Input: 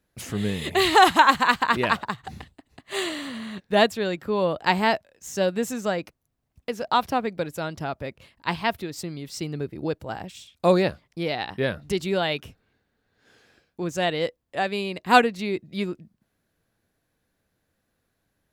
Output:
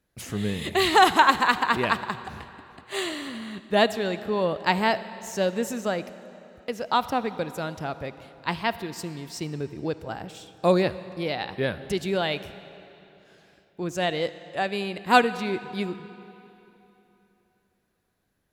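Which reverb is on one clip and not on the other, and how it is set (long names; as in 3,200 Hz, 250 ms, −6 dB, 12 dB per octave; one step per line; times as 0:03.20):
comb and all-pass reverb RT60 3.2 s, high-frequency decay 0.85×, pre-delay 15 ms, DRR 13.5 dB
level −1.5 dB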